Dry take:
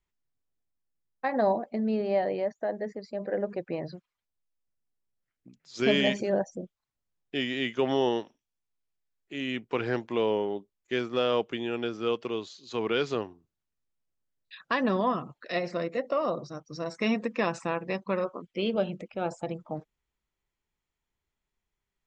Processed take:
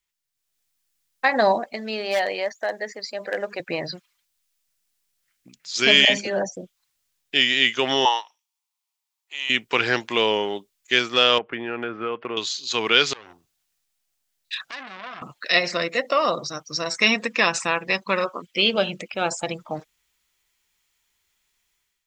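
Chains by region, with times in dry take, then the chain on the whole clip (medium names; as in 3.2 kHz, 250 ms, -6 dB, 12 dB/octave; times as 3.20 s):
1.73–3.60 s: high-pass 560 Hz 6 dB/octave + hard clipper -23.5 dBFS
6.05–6.57 s: treble shelf 7.1 kHz -8 dB + phase dispersion lows, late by 48 ms, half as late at 650 Hz
8.05–9.50 s: resonant high-pass 910 Hz, resonance Q 4.4 + peaking EQ 1.6 kHz -7.5 dB 0.47 oct + upward expansion, over -40 dBFS
11.38–12.37 s: low-pass 1.9 kHz 24 dB/octave + compression 3:1, threshold -29 dBFS
13.13–15.22 s: peaking EQ 740 Hz +7.5 dB 0.29 oct + compression 10:1, threshold -39 dBFS + transformer saturation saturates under 2.8 kHz
whole clip: tilt shelf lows -10 dB, about 1.2 kHz; level rider gain up to 11.5 dB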